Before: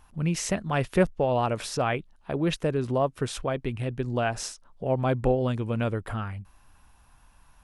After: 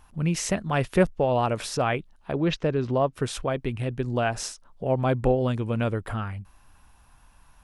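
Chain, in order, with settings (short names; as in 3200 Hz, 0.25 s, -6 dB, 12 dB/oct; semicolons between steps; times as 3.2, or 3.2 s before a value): 2.32–3.13 LPF 5900 Hz 24 dB/oct; gain +1.5 dB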